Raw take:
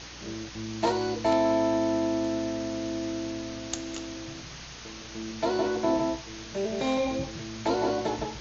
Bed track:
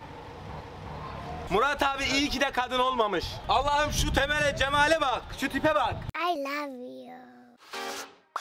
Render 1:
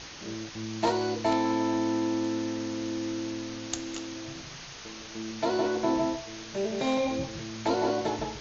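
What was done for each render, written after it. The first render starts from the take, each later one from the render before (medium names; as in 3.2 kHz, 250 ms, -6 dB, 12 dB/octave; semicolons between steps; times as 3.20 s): de-hum 60 Hz, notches 11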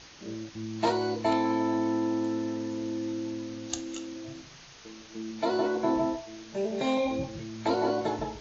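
noise print and reduce 7 dB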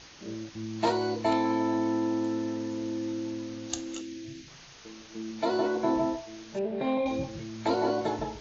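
4.01–4.48 s: high-order bell 830 Hz -13 dB; 6.59–7.06 s: distance through air 330 m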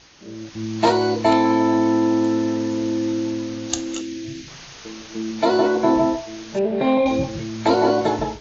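level rider gain up to 10.5 dB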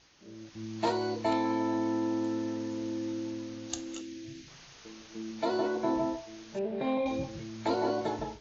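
trim -12.5 dB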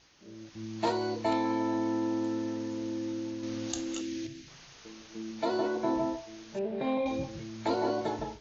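3.43–4.27 s: level flattener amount 70%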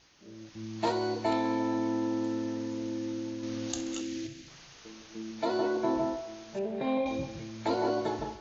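thinning echo 65 ms, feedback 79%, high-pass 200 Hz, level -16 dB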